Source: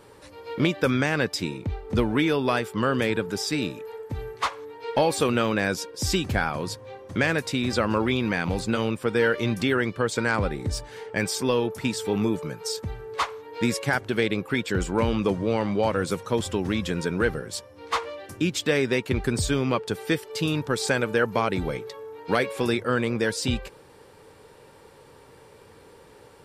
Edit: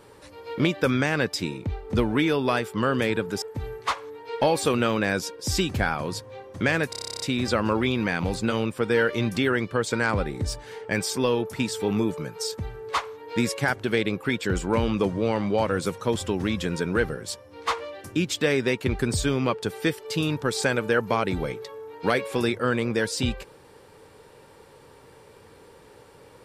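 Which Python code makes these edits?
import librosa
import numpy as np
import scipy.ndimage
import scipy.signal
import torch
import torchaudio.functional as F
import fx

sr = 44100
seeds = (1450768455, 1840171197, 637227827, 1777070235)

y = fx.edit(x, sr, fx.cut(start_s=3.42, length_s=0.55),
    fx.stutter(start_s=7.45, slice_s=0.03, count=11), tone=tone)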